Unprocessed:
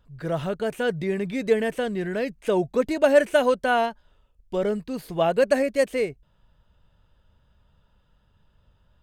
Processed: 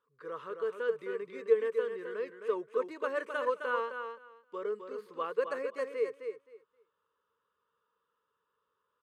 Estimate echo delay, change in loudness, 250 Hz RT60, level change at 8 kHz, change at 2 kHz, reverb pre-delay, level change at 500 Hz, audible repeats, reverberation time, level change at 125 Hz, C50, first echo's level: 262 ms, −11.0 dB, no reverb audible, below −20 dB, −10.5 dB, no reverb audible, −10.0 dB, 2, no reverb audible, below −30 dB, no reverb audible, −7.0 dB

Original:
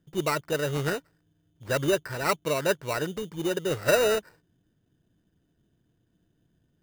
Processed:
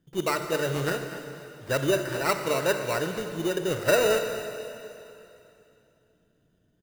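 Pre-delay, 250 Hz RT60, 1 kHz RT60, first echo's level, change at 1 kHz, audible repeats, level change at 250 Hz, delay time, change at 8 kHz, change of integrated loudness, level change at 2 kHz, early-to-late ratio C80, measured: 22 ms, 2.8 s, 2.9 s, −15.0 dB, +1.0 dB, 1, +1.0 dB, 244 ms, +1.0 dB, +0.5 dB, +1.0 dB, 7.0 dB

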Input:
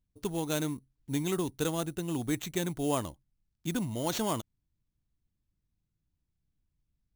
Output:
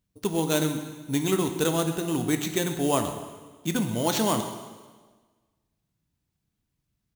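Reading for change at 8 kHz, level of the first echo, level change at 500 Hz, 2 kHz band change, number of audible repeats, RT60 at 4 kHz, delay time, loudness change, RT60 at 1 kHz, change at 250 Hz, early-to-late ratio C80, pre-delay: +7.5 dB, −16.5 dB, +7.0 dB, +7.5 dB, 1, 1.4 s, 130 ms, +6.5 dB, 1.4 s, +6.5 dB, 9.0 dB, 4 ms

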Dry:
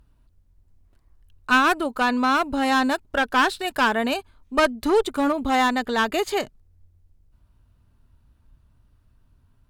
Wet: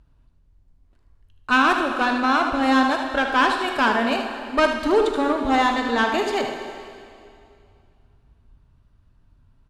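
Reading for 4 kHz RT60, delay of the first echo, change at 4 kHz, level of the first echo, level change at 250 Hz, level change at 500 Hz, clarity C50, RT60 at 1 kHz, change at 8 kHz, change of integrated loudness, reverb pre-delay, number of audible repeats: 2.2 s, 76 ms, +0.5 dB, −8.5 dB, +1.5 dB, +1.5 dB, 3.5 dB, 2.4 s, −3.0 dB, +1.5 dB, 5 ms, 1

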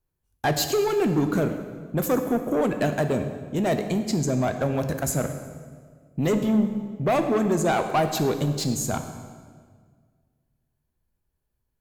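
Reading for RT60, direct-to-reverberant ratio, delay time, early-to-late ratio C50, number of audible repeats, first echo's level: 1.7 s, 6.5 dB, no echo audible, 8.5 dB, no echo audible, no echo audible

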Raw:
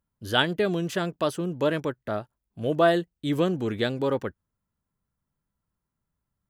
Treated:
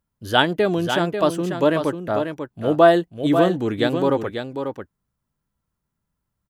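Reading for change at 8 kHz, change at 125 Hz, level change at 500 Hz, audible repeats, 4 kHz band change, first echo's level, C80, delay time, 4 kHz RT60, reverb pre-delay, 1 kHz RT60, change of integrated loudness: can't be measured, +4.0 dB, +7.0 dB, 1, +4.0 dB, −7.5 dB, no reverb audible, 542 ms, no reverb audible, no reverb audible, no reverb audible, +6.0 dB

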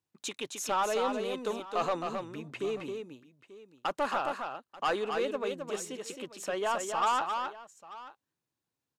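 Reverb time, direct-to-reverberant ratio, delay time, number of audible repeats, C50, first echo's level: no reverb audible, no reverb audible, 266 ms, 2, no reverb audible, −5.5 dB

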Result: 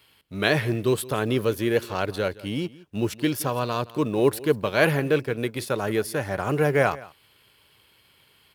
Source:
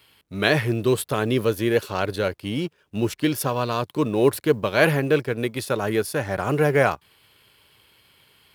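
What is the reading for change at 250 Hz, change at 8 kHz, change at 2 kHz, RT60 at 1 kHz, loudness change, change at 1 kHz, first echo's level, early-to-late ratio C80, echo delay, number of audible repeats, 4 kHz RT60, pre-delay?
−2.0 dB, −2.0 dB, −2.0 dB, no reverb audible, −2.0 dB, −2.0 dB, −20.0 dB, no reverb audible, 170 ms, 1, no reverb audible, no reverb audible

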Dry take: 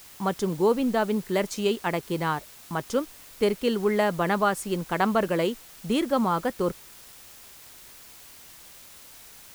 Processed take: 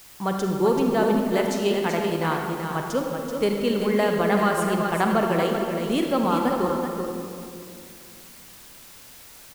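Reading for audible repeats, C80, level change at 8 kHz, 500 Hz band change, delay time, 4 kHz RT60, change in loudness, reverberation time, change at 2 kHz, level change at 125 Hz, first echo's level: 1, 2.0 dB, +1.5 dB, +3.0 dB, 383 ms, 1.3 s, +2.5 dB, 2.5 s, +2.5 dB, +4.0 dB, −7.0 dB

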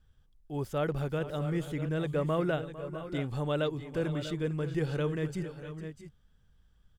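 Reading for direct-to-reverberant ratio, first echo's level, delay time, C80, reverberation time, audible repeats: no reverb audible, −15.5 dB, 453 ms, no reverb audible, no reverb audible, 2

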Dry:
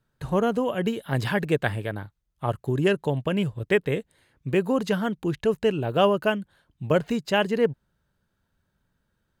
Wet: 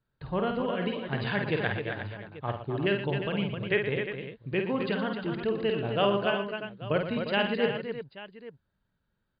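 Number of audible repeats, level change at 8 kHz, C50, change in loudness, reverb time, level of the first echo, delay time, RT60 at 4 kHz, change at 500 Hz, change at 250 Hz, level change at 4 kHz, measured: 5, can't be measured, no reverb audible, −4.5 dB, no reverb audible, −5.5 dB, 50 ms, no reverb audible, −5.0 dB, −5.0 dB, −1.0 dB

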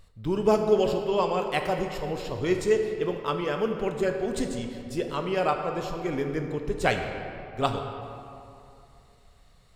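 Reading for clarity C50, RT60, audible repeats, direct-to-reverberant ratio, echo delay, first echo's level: 5.5 dB, 2.7 s, no echo audible, 4.0 dB, no echo audible, no echo audible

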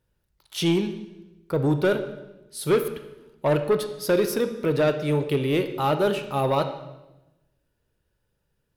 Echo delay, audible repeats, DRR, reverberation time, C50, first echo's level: no echo audible, no echo audible, 8.0 dB, 1.0 s, 10.0 dB, no echo audible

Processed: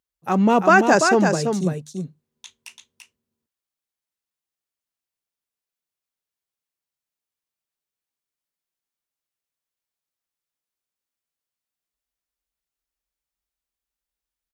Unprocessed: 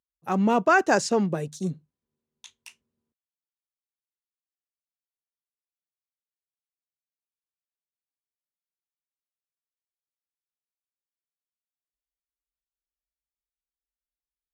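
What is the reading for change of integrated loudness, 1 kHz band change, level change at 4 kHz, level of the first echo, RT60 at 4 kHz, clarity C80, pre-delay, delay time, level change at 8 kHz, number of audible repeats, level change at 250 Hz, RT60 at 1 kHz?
+6.0 dB, +6.0 dB, +6.0 dB, −5.5 dB, no reverb audible, no reverb audible, no reverb audible, 338 ms, +6.0 dB, 1, +6.0 dB, no reverb audible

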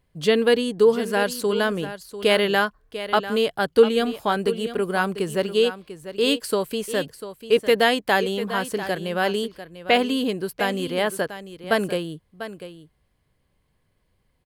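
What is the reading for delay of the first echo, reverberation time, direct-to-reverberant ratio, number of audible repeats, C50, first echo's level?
695 ms, no reverb audible, no reverb audible, 1, no reverb audible, −12.5 dB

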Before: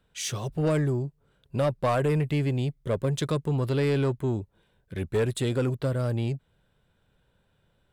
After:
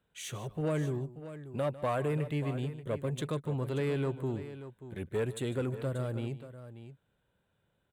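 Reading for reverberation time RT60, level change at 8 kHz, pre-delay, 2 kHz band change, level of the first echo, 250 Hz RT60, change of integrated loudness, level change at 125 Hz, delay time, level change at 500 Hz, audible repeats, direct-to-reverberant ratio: no reverb audible, −9.5 dB, no reverb audible, −6.5 dB, −16.5 dB, no reverb audible, −7.0 dB, −8.0 dB, 150 ms, −6.5 dB, 2, no reverb audible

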